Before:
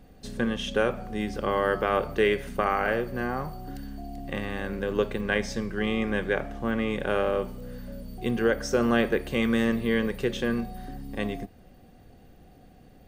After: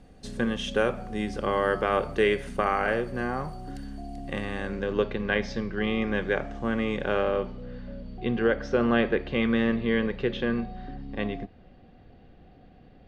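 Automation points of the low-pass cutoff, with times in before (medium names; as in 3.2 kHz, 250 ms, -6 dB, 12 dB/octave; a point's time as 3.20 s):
low-pass 24 dB/octave
4.51 s 11 kHz
5.04 s 5 kHz
5.87 s 5 kHz
6.70 s 8.4 kHz
7.66 s 4 kHz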